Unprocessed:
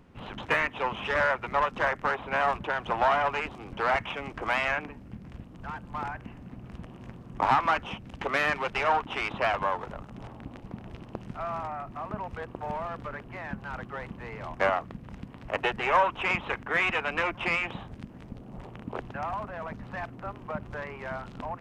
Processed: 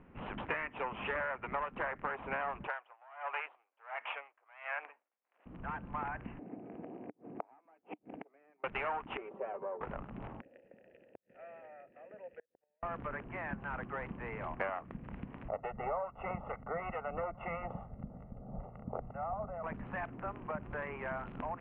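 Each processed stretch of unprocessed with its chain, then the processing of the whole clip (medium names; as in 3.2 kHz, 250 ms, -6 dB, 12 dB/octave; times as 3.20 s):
2.67–5.46 s: high-pass 580 Hz 24 dB/octave + logarithmic tremolo 1.4 Hz, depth 34 dB
6.39–8.64 s: band-stop 1.4 kHz, Q 8.1 + inverted gate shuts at -26 dBFS, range -38 dB + cabinet simulation 250–2200 Hz, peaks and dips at 300 Hz +9 dB, 440 Hz +8 dB, 700 Hz +7 dB, 1.1 kHz -9 dB, 1.8 kHz -7 dB
9.17–9.81 s: band-pass filter 450 Hz, Q 4.2 + comb 5.2 ms, depth 60%
10.41–12.83 s: vowel filter e + inverted gate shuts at -38 dBFS, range -37 dB
15.48–19.64 s: comb 1.5 ms, depth 69% + harmonic tremolo 2.3 Hz, depth 50%, crossover 1.4 kHz + Savitzky-Golay filter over 65 samples
whole clip: steep low-pass 2.7 kHz 36 dB/octave; peaking EQ 100 Hz -5.5 dB 0.69 oct; compression 5:1, threshold -33 dBFS; trim -1.5 dB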